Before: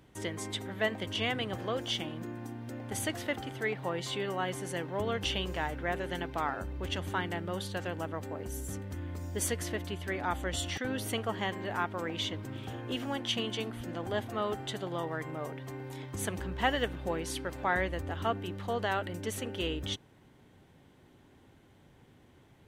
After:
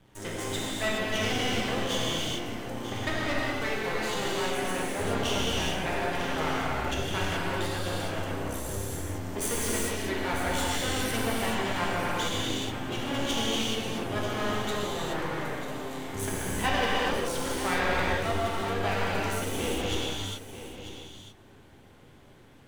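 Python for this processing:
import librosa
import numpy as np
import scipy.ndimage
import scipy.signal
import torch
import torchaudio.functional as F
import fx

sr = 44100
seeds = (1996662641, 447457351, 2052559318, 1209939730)

y = fx.lowpass_res(x, sr, hz=fx.line((2.86, 3600.0), (3.26, 1000.0)), q=2.6, at=(2.86, 3.26), fade=0.02)
y = np.maximum(y, 0.0)
y = y + 10.0 ** (-12.0 / 20.0) * np.pad(y, (int(943 * sr / 1000.0), 0))[:len(y)]
y = fx.rev_gated(y, sr, seeds[0], gate_ms=450, shape='flat', drr_db=-6.5)
y = y * librosa.db_to_amplitude(3.0)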